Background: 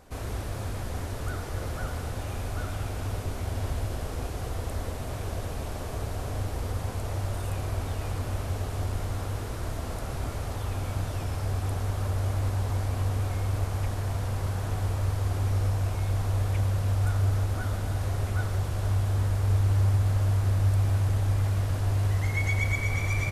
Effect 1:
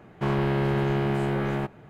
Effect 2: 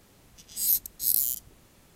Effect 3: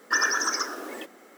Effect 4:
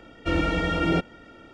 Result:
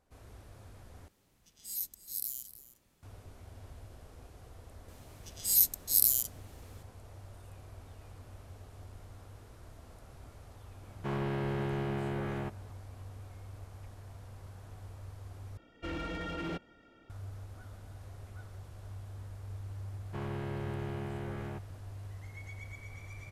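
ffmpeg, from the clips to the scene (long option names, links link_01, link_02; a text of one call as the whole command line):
ffmpeg -i bed.wav -i cue0.wav -i cue1.wav -i cue2.wav -i cue3.wav -filter_complex "[2:a]asplit=2[link_01][link_02];[1:a]asplit=2[link_03][link_04];[0:a]volume=-19.5dB[link_05];[link_01]aecho=1:1:311:0.158[link_06];[link_02]aresample=32000,aresample=44100[link_07];[4:a]volume=20.5dB,asoftclip=hard,volume=-20.5dB[link_08];[link_05]asplit=3[link_09][link_10][link_11];[link_09]atrim=end=1.084[link_12];[link_06]atrim=end=1.95,asetpts=PTS-STARTPTS,volume=-13dB[link_13];[link_10]atrim=start=3.026:end=15.574[link_14];[link_08]atrim=end=1.53,asetpts=PTS-STARTPTS,volume=-13dB[link_15];[link_11]atrim=start=17.096[link_16];[link_07]atrim=end=1.95,asetpts=PTS-STARTPTS,volume=-0.5dB,afade=type=in:duration=0.004:curve=hsin,afade=type=out:start_time=1.946:duration=0.004:curve=hsin,adelay=4880[link_17];[link_03]atrim=end=1.89,asetpts=PTS-STARTPTS,volume=-9.5dB,afade=type=in:duration=0.004:curve=hsin,afade=type=out:start_time=1.886:duration=0.004:curve=hsin,adelay=10830[link_18];[link_04]atrim=end=1.89,asetpts=PTS-STARTPTS,volume=-14.5dB,afade=type=in:duration=0.004:curve=hsin,afade=type=out:start_time=1.886:duration=0.004:curve=hsin,adelay=19920[link_19];[link_12][link_13]acrossfade=duration=0.004:curve1=hsin:curve2=hsin[link_20];[link_20][link_14]acrossfade=duration=0.004:curve1=hsin:curve2=hsin[link_21];[link_21][link_15]acrossfade=duration=0.004:curve1=hsin:curve2=hsin[link_22];[link_22][link_16]acrossfade=duration=0.004:curve1=hsin:curve2=hsin[link_23];[link_23][link_17][link_18][link_19]amix=inputs=4:normalize=0" out.wav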